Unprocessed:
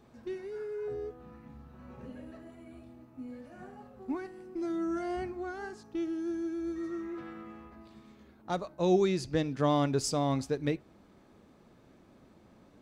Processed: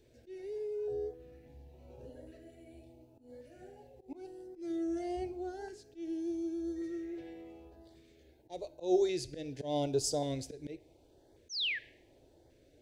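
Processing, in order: painted sound fall, 11.49–11.79, 1600–6600 Hz -30 dBFS; fixed phaser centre 490 Hz, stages 4; auto swell 0.157 s; LFO notch saw up 0.88 Hz 740–2700 Hz; two-slope reverb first 0.63 s, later 1.6 s, from -23 dB, DRR 16 dB

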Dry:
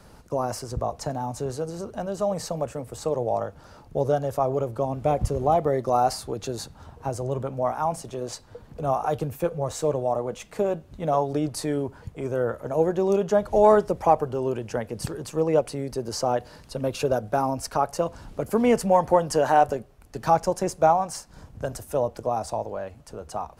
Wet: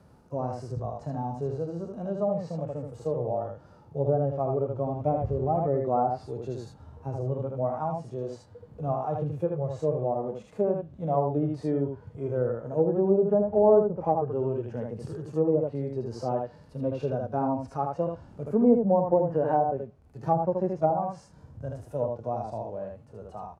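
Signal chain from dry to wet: HPF 71 Hz; tilt shelf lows +6 dB, about 1200 Hz; echo 78 ms -5.5 dB; harmonic-percussive split percussive -18 dB; treble ducked by the level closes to 720 Hz, closed at -12.5 dBFS; gain -5.5 dB

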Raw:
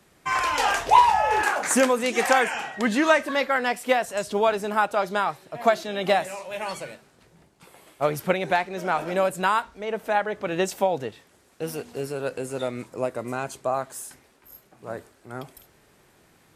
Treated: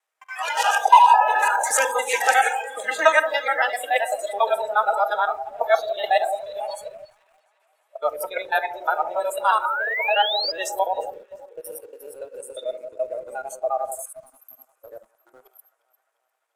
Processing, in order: local time reversal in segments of 71 ms; HPF 620 Hz 24 dB/oct; bell 4400 Hz -4.5 dB 0.55 oct; echo with dull and thin repeats by turns 0.175 s, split 1400 Hz, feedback 78%, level -9 dB; on a send at -8.5 dB: reverb RT60 0.90 s, pre-delay 6 ms; on the sum: painted sound rise, 9.65–10.52, 1200–5000 Hz -29 dBFS; in parallel at -11 dB: bit-crush 6-bit; on the sum: spectral noise reduction 21 dB; gain +1.5 dB

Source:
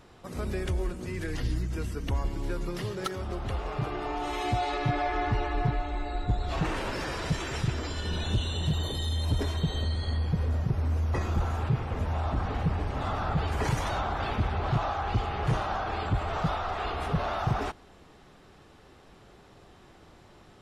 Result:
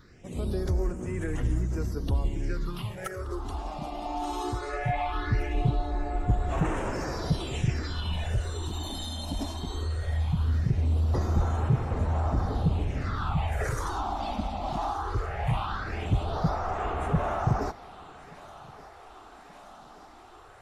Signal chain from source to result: phaser stages 6, 0.19 Hz, lowest notch 110–4400 Hz; thinning echo 1.177 s, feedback 82%, high-pass 380 Hz, level -17.5 dB; gain +1.5 dB

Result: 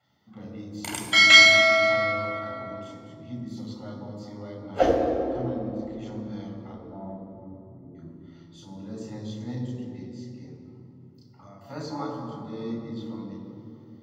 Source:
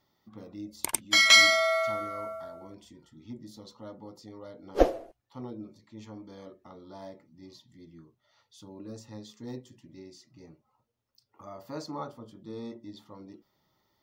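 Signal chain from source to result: 6.72–7.95 inverse Chebyshev low-pass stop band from 2700 Hz, stop band 50 dB; 10–11.61 compressor, threshold -50 dBFS, peak gain reduction 9.5 dB; reverb RT60 2.8 s, pre-delay 3 ms, DRR -1.5 dB; gain -7 dB

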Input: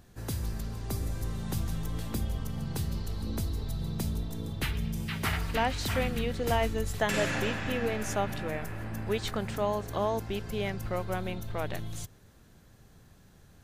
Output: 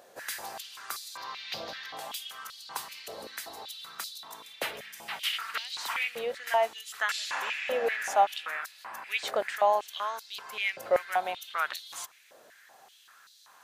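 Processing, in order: vocal rider within 5 dB 2 s; 1.17–1.97 resonant high shelf 6300 Hz -13 dB, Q 3; stepped high-pass 5.2 Hz 570–4100 Hz

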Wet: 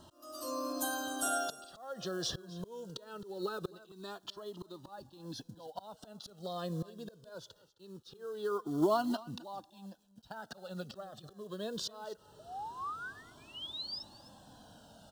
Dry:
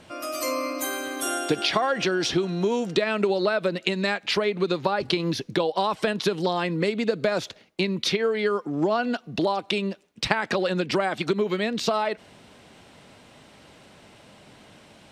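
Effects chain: 3.23–3.68 low shelf 300 Hz +8.5 dB; auto swell 0.726 s; 10.91–11.31 negative-ratio compressor -44 dBFS, ratio -1; companded quantiser 6-bit; 12.39–14.03 painted sound rise 620–5400 Hz -36 dBFS; Butterworth band-stop 2200 Hz, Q 1.3; on a send: echo 0.263 s -19.5 dB; on the sum: cascading flanger falling 0.22 Hz; gain -1 dB

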